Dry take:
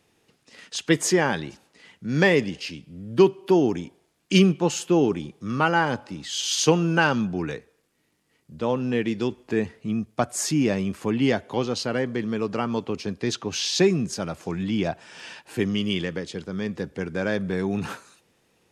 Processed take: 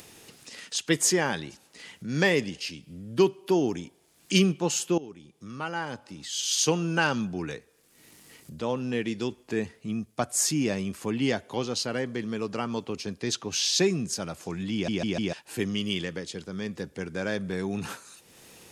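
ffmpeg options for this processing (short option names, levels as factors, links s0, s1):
-filter_complex "[0:a]asplit=6[s0][s1][s2][s3][s4][s5];[s0]atrim=end=4.98,asetpts=PTS-STARTPTS,afade=t=out:st=4.976:d=0.004:c=hsin:silence=0.125893[s6];[s1]atrim=start=4.98:end=14.882,asetpts=PTS-STARTPTS,afade=t=in:d=2.1:silence=0.125893[s7];[s2]atrim=start=14.728:end=14.882[s8];[s3]atrim=start=14.728:end=14.882[s9];[s4]atrim=start=14.728:end=14.882[s10];[s5]atrim=start=15.328[s11];[s6][s7]concat=n=2:v=0:a=1[s12];[s12][s8]acrossfade=d=0.004:c1=hsin:c2=hsin[s13];[s13][s9]acrossfade=d=0.004:c1=hsin:c2=hsin[s14];[s14][s10]acrossfade=d=0.004:c1=hsin:c2=hsin[s15];[s15][s11]acrossfade=d=0.004:c1=hsin:c2=hsin,highshelf=f=4400:g=10.5,acompressor=mode=upward:threshold=0.0282:ratio=2.5,volume=0.562"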